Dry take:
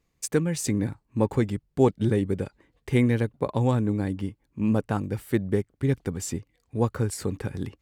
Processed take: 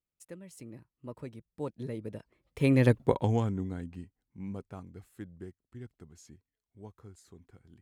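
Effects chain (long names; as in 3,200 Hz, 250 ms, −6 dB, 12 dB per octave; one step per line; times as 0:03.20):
source passing by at 0:02.96, 37 m/s, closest 4.8 metres
level +4.5 dB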